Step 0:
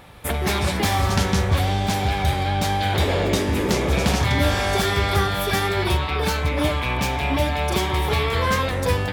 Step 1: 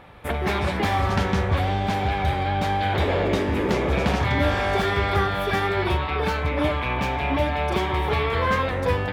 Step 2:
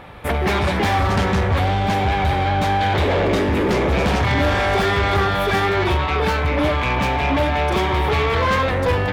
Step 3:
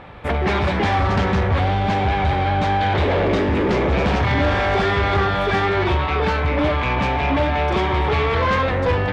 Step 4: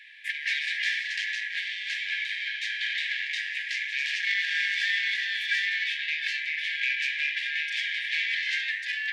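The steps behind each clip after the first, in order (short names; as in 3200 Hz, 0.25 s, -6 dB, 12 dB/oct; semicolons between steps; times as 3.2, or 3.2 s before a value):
tone controls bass -3 dB, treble -15 dB
soft clip -20.5 dBFS, distortion -13 dB; gain +7.5 dB
air absorption 100 m
brick-wall FIR high-pass 1600 Hz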